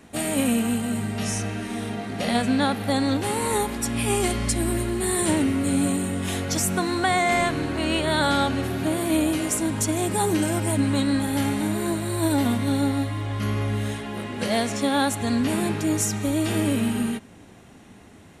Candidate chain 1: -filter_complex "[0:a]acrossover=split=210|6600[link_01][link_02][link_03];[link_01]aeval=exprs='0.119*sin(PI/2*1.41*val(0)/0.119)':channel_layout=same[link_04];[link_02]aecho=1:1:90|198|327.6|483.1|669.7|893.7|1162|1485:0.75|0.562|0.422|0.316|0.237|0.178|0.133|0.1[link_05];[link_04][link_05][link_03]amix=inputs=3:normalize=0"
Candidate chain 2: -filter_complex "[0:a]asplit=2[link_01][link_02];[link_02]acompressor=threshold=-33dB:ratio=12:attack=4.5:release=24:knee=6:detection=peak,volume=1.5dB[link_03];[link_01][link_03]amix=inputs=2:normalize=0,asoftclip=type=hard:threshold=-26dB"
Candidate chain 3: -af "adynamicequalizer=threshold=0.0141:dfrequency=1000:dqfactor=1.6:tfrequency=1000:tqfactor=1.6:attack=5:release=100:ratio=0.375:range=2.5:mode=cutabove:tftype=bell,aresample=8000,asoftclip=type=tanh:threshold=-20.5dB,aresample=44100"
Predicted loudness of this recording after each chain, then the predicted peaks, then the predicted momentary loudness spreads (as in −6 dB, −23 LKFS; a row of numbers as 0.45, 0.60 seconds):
−20.0, −27.5, −27.5 LKFS; −6.0, −26.0, −19.0 dBFS; 6, 2, 4 LU